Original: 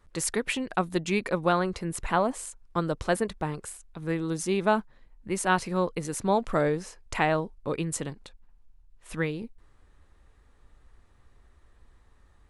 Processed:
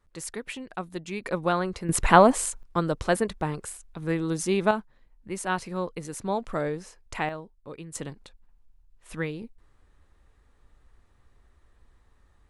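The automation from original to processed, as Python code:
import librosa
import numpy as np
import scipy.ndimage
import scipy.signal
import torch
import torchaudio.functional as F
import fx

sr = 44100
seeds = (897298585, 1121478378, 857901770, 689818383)

y = fx.gain(x, sr, db=fx.steps((0.0, -7.5), (1.24, -1.0), (1.89, 9.5), (2.63, 2.0), (4.71, -4.0), (7.29, -11.0), (7.95, -2.0)))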